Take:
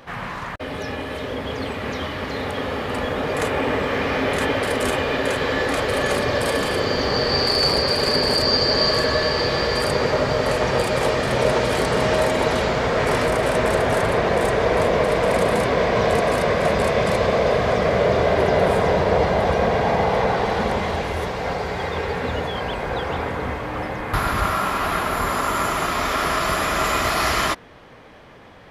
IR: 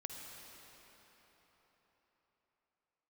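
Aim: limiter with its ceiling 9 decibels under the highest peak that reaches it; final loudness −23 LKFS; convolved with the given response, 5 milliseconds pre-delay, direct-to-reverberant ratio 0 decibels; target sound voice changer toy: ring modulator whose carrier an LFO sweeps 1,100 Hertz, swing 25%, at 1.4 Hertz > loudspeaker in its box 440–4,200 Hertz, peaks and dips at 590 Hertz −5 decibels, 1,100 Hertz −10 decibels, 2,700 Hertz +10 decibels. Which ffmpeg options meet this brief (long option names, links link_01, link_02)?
-filter_complex "[0:a]alimiter=limit=-15dB:level=0:latency=1,asplit=2[link_01][link_02];[1:a]atrim=start_sample=2205,adelay=5[link_03];[link_02][link_03]afir=irnorm=-1:irlink=0,volume=2dB[link_04];[link_01][link_04]amix=inputs=2:normalize=0,aeval=exprs='val(0)*sin(2*PI*1100*n/s+1100*0.25/1.4*sin(2*PI*1.4*n/s))':channel_layout=same,highpass=440,equalizer=frequency=590:width_type=q:width=4:gain=-5,equalizer=frequency=1100:width_type=q:width=4:gain=-10,equalizer=frequency=2700:width_type=q:width=4:gain=10,lowpass=frequency=4200:width=0.5412,lowpass=frequency=4200:width=1.3066"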